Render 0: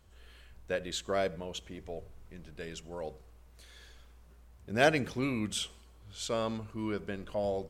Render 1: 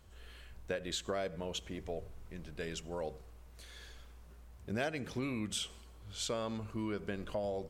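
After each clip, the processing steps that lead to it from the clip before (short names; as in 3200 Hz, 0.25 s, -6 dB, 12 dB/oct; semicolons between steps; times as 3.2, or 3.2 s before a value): compressor 5:1, threshold -36 dBFS, peak gain reduction 15 dB; gain +2 dB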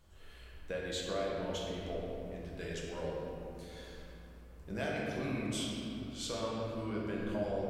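shoebox room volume 130 m³, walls hard, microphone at 0.71 m; gain -5 dB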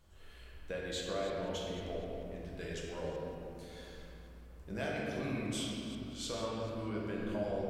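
reverse delay 0.186 s, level -13 dB; gain -1 dB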